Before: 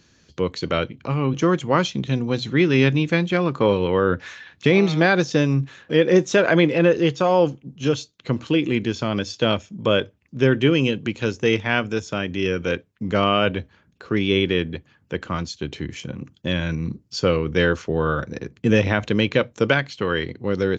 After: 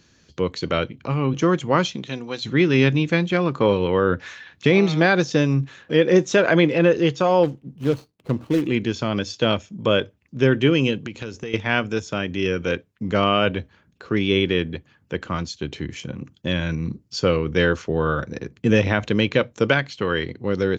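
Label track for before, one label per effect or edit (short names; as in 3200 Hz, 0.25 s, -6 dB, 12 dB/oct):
1.950000	2.440000	HPF 350 Hz -> 1000 Hz 6 dB/oct
7.430000	8.670000	median filter over 25 samples
11.060000	11.540000	compressor 12:1, threshold -26 dBFS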